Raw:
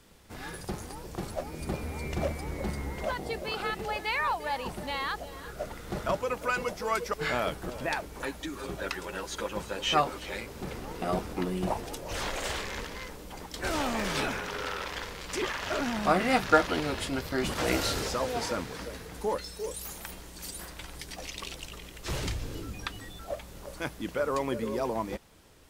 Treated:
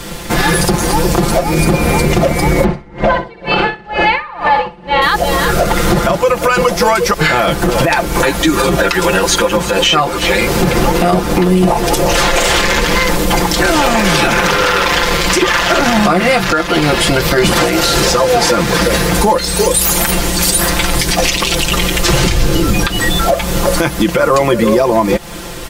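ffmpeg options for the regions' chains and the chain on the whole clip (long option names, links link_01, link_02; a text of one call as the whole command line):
ffmpeg -i in.wav -filter_complex "[0:a]asettb=1/sr,asplit=3[link_01][link_02][link_03];[link_01]atrim=end=2.644[link_04];[link_02]atrim=start=2.64:end=5.02,asetpts=PTS-STARTPTS,afade=type=in:duration=0.004:curve=qsin,afade=type=out:start_time=2.376:duration=0.004:curve=qsin,lowpass=2800,aecho=1:1:62|124|186|248|310|372|434|496:0.501|0.301|0.18|0.108|0.065|0.039|0.0234|0.014,atrim=end_sample=104958,aeval=exprs='val(0)*pow(10,-34*(0.5-0.5*cos(2*PI*2.1*n/s))/20)':channel_layout=same[link_05];[link_03]atrim=start=5.016[link_06];[link_04][link_05]acrossfade=duration=0.004:curve1=hsin:curve2=qsin[link_07];[link_07][link_06]acrossfade=duration=0.004:curve1=qsin:curve2=hsin,aecho=1:1:5.8:0.79,acompressor=threshold=-36dB:ratio=8,alimiter=level_in=31dB:limit=-1dB:release=50:level=0:latency=1,volume=-1dB" out.wav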